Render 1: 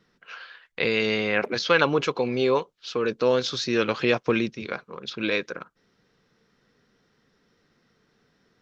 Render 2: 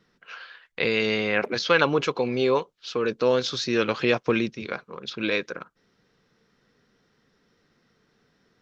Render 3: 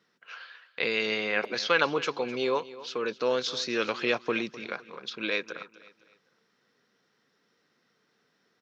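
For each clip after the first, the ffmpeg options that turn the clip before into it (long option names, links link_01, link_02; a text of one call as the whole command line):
ffmpeg -i in.wav -af anull out.wav
ffmpeg -i in.wav -af "highpass=150,lowshelf=frequency=430:gain=-7,aecho=1:1:255|510|765:0.141|0.0509|0.0183,volume=-2.5dB" out.wav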